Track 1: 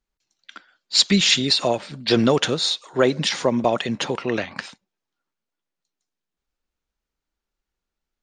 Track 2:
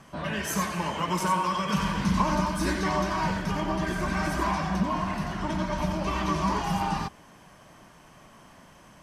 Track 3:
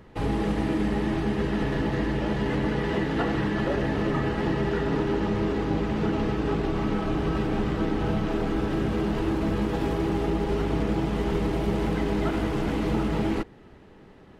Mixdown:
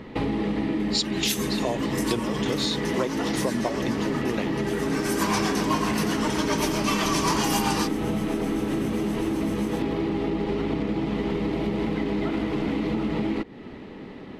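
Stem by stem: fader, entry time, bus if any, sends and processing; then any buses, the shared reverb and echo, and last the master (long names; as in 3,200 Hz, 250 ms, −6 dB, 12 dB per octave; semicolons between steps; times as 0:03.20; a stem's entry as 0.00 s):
+2.0 dB, 0.00 s, bus A, no send, gate pattern "xx..x...xx" 171 BPM −12 dB
−1.5 dB, 0.80 s, no bus, no send, amplitude tremolo 7.7 Hz, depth 52%; automatic gain control gain up to 5.5 dB; spectral tilt +4.5 dB per octave; automatic ducking −14 dB, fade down 1.50 s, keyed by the first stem
+1.5 dB, 0.00 s, bus A, no send, octave-band graphic EQ 125/250/500/1,000/2,000/4,000 Hz +3/+12/+5/+4/+10/+8 dB; downward compressor 1.5 to 1, threshold −29 dBFS, peak gain reduction 6.5 dB
bus A: 0.0 dB, parametric band 1,600 Hz −6.5 dB 0.35 octaves; downward compressor 5 to 1, threshold −23 dBFS, peak gain reduction 13 dB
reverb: not used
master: no processing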